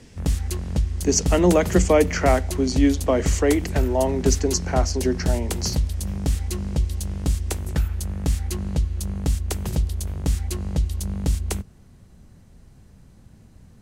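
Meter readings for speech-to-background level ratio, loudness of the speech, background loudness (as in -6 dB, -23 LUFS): 4.5 dB, -22.0 LUFS, -26.5 LUFS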